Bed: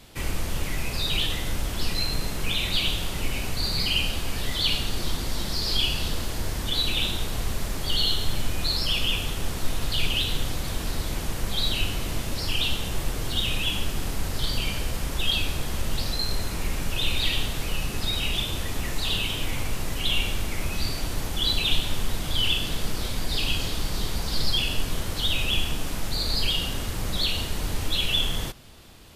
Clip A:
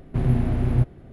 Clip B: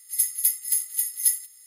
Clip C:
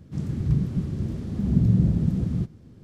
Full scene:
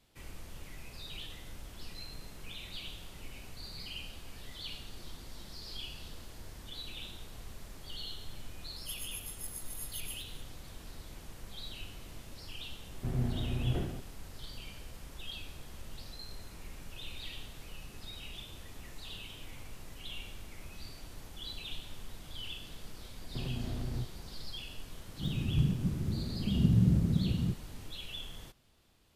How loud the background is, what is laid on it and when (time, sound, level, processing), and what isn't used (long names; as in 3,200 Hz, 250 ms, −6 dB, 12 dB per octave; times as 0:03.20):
bed −19 dB
0:08.76: mix in B −15 dB + compressor whose output falls as the input rises −30 dBFS
0:12.89: mix in A −12.5 dB + level that may fall only so fast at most 56 dB per second
0:23.21: mix in A −9.5 dB + downward compressor, threshold −23 dBFS
0:25.08: mix in C −6 dB + stylus tracing distortion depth 0.12 ms